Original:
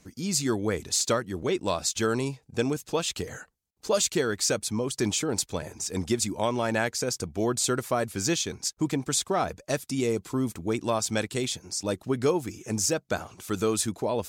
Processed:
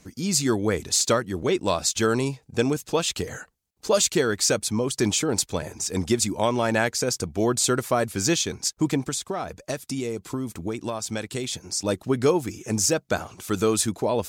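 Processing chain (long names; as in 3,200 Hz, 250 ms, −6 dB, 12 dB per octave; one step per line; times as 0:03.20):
0:09.08–0:11.53: downward compressor, threshold −30 dBFS, peak gain reduction 9 dB
level +4 dB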